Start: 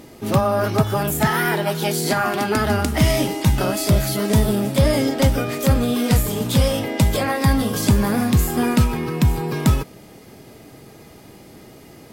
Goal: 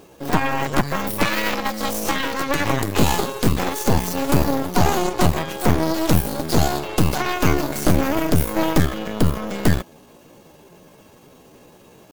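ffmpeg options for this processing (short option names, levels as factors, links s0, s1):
-af "asetrate=58866,aresample=44100,atempo=0.749154,aeval=exprs='0.562*(cos(1*acos(clip(val(0)/0.562,-1,1)))-cos(1*PI/2))+0.282*(cos(4*acos(clip(val(0)/0.562,-1,1)))-cos(4*PI/2))':c=same,volume=0.596"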